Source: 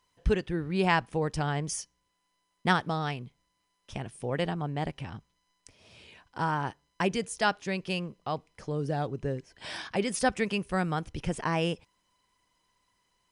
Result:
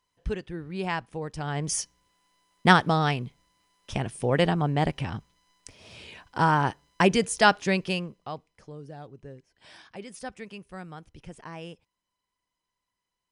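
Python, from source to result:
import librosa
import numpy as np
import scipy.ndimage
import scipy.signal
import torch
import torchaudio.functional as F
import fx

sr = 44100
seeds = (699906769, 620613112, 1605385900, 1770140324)

y = fx.gain(x, sr, db=fx.line((1.36, -5.0), (1.8, 7.5), (7.73, 7.5), (8.16, -1.5), (8.87, -12.0)))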